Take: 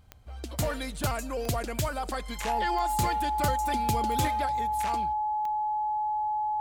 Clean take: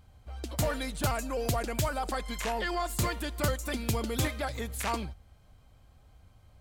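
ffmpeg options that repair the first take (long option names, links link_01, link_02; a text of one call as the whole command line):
ffmpeg -i in.wav -af "adeclick=threshold=4,bandreject=frequency=850:width=30,asetnsamples=nb_out_samples=441:pad=0,asendcmd='4.46 volume volume 4dB',volume=0dB" out.wav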